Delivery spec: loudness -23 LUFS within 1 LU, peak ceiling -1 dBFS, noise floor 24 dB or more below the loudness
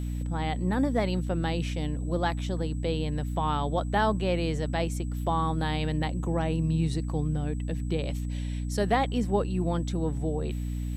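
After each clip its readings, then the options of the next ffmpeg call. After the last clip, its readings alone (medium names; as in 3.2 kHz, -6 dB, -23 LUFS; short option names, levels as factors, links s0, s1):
hum 60 Hz; highest harmonic 300 Hz; hum level -29 dBFS; steady tone 7.9 kHz; tone level -55 dBFS; loudness -29.0 LUFS; peak level -12.5 dBFS; loudness target -23.0 LUFS
-> -af "bandreject=f=60:t=h:w=6,bandreject=f=120:t=h:w=6,bandreject=f=180:t=h:w=6,bandreject=f=240:t=h:w=6,bandreject=f=300:t=h:w=6"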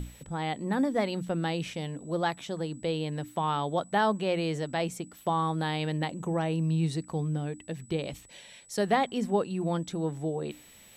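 hum not found; steady tone 7.9 kHz; tone level -55 dBFS
-> -af "bandreject=f=7900:w=30"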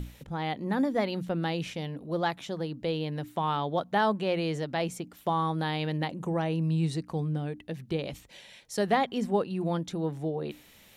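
steady tone not found; loudness -30.5 LUFS; peak level -13.5 dBFS; loudness target -23.0 LUFS
-> -af "volume=2.37"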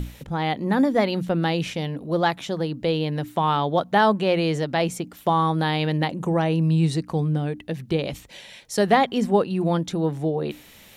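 loudness -23.0 LUFS; peak level -6.0 dBFS; noise floor -49 dBFS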